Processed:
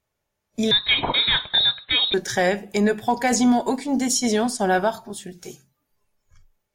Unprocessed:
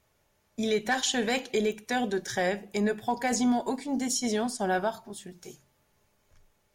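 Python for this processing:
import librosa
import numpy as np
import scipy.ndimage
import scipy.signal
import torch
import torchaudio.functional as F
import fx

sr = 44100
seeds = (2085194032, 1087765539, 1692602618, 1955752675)

y = fx.noise_reduce_blind(x, sr, reduce_db=16)
y = fx.freq_invert(y, sr, carrier_hz=4000, at=(0.71, 2.14))
y = F.gain(torch.from_numpy(y), 7.5).numpy()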